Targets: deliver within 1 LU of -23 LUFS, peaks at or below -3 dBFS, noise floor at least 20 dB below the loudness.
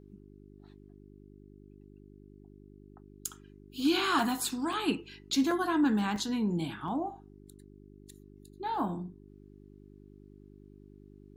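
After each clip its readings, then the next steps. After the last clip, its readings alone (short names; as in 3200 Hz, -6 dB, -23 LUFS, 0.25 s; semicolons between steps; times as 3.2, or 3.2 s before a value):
dropouts 5; longest dropout 2.6 ms; hum 50 Hz; harmonics up to 400 Hz; hum level -49 dBFS; loudness -31.0 LUFS; peak -15.0 dBFS; loudness target -23.0 LUFS
-> interpolate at 4.19/4.73/5.51/6.16/6.88, 2.6 ms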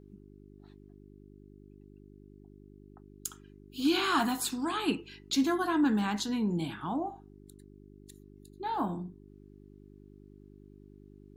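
dropouts 0; hum 50 Hz; harmonics up to 400 Hz; hum level -49 dBFS
-> de-hum 50 Hz, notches 8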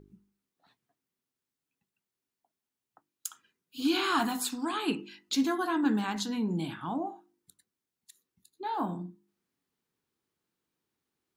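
hum none; loudness -31.5 LUFS; peak -15.0 dBFS; loudness target -23.0 LUFS
-> gain +8.5 dB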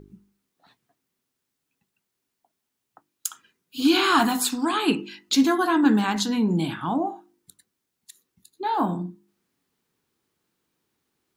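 loudness -23.0 LUFS; peak -6.5 dBFS; noise floor -81 dBFS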